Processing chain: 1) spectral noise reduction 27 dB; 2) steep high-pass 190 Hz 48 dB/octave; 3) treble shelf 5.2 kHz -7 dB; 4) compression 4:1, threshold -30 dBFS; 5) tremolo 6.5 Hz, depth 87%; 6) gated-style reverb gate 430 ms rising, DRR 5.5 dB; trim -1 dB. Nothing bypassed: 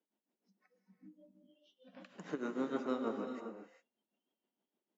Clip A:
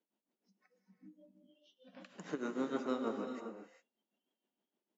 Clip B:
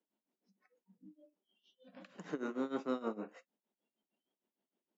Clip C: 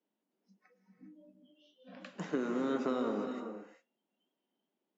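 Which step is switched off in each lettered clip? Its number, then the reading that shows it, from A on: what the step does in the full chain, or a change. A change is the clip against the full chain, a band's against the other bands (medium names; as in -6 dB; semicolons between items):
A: 3, 4 kHz band +2.0 dB; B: 6, momentary loudness spread change -1 LU; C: 5, crest factor change -3.0 dB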